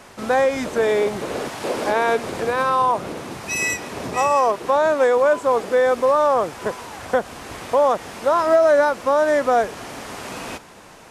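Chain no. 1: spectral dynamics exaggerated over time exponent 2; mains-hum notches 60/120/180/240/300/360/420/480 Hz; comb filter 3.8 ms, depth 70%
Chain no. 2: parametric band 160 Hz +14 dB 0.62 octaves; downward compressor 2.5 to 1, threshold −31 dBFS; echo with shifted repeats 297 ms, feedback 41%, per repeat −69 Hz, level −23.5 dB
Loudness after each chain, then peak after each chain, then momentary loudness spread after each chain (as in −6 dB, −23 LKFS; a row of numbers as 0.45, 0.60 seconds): −21.0, −30.0 LKFS; −7.5, −15.0 dBFS; 14, 6 LU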